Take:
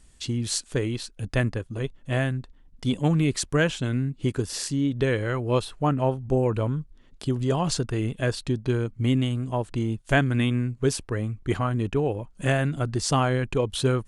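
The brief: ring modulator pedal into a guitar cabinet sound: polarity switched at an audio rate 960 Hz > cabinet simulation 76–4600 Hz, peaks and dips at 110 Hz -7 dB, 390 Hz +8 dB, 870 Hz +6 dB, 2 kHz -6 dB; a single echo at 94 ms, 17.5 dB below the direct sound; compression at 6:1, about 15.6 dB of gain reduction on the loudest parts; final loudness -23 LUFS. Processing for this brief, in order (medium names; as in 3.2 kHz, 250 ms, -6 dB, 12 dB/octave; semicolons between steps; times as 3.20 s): compression 6:1, threshold -35 dBFS; delay 94 ms -17.5 dB; polarity switched at an audio rate 960 Hz; cabinet simulation 76–4600 Hz, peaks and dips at 110 Hz -7 dB, 390 Hz +8 dB, 870 Hz +6 dB, 2 kHz -6 dB; trim +13 dB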